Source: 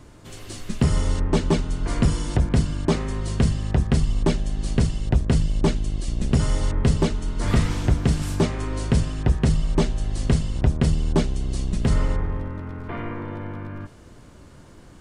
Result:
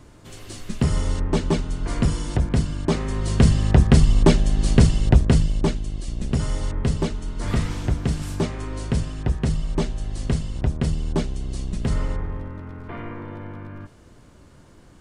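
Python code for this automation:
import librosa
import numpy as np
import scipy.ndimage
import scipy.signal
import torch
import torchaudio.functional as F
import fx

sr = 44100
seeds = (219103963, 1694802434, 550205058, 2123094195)

y = fx.gain(x, sr, db=fx.line((2.86, -1.0), (3.58, 6.0), (5.08, 6.0), (5.82, -3.0)))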